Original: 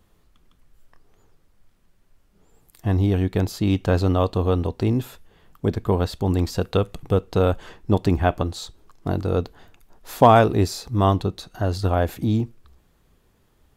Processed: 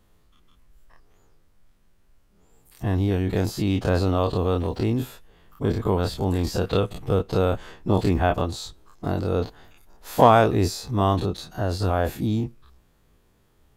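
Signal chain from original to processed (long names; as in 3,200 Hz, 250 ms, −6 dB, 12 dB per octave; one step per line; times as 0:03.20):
every bin's largest magnitude spread in time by 60 ms
0:04.39–0:04.81: background noise pink −59 dBFS
level −4.5 dB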